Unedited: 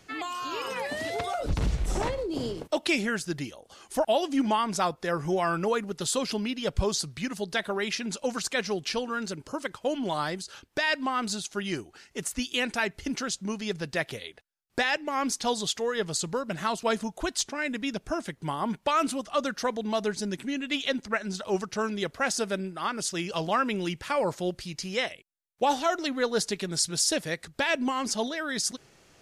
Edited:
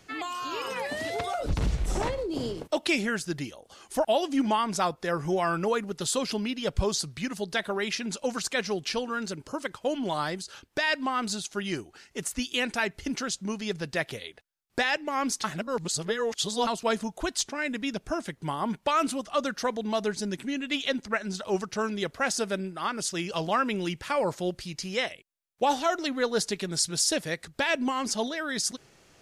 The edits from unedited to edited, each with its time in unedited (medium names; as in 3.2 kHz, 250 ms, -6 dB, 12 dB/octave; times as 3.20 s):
15.44–16.67 s: reverse